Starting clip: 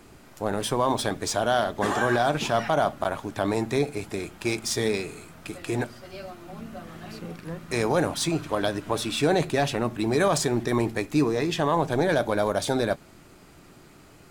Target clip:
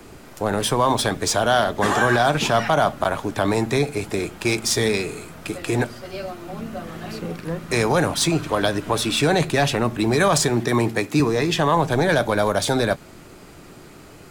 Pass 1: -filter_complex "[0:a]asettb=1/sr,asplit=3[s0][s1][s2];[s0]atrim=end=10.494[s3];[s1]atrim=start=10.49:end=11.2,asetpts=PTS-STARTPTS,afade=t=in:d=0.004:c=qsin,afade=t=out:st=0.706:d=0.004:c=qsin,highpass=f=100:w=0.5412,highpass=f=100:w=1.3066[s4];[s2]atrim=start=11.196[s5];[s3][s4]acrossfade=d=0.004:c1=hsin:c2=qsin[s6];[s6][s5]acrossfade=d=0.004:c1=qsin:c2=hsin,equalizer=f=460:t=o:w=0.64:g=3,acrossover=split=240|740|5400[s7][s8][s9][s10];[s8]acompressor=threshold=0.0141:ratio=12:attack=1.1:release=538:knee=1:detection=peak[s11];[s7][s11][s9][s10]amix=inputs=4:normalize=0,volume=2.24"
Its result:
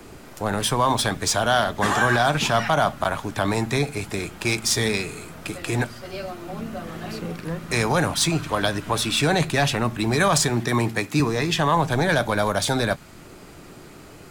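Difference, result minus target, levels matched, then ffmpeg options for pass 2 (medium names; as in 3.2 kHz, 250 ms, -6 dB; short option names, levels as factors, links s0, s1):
compression: peak gain reduction +9 dB
-filter_complex "[0:a]asettb=1/sr,asplit=3[s0][s1][s2];[s0]atrim=end=10.494[s3];[s1]atrim=start=10.49:end=11.2,asetpts=PTS-STARTPTS,afade=t=in:d=0.004:c=qsin,afade=t=out:st=0.706:d=0.004:c=qsin,highpass=f=100:w=0.5412,highpass=f=100:w=1.3066[s4];[s2]atrim=start=11.196[s5];[s3][s4]acrossfade=d=0.004:c1=hsin:c2=qsin[s6];[s6][s5]acrossfade=d=0.004:c1=qsin:c2=hsin,equalizer=f=460:t=o:w=0.64:g=3,acrossover=split=240|740|5400[s7][s8][s9][s10];[s8]acompressor=threshold=0.0447:ratio=12:attack=1.1:release=538:knee=1:detection=peak[s11];[s7][s11][s9][s10]amix=inputs=4:normalize=0,volume=2.24"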